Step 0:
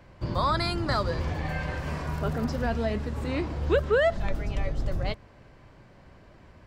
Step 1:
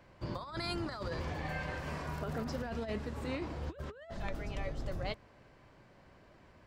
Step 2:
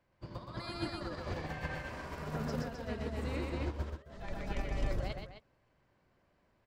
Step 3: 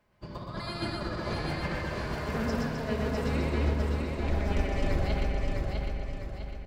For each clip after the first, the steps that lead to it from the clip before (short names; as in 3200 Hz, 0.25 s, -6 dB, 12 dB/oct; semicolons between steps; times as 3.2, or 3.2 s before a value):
low shelf 150 Hz -7 dB; negative-ratio compressor -30 dBFS, ratio -0.5; gain -7 dB
limiter -30 dBFS, peak gain reduction 5 dB; loudspeakers at several distances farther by 42 m -2 dB, 89 m -2 dB; upward expander 2.5:1, over -44 dBFS; gain +4 dB
feedback echo 0.653 s, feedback 43%, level -4 dB; reverb RT60 1.8 s, pre-delay 5 ms, DRR 3 dB; gain +4.5 dB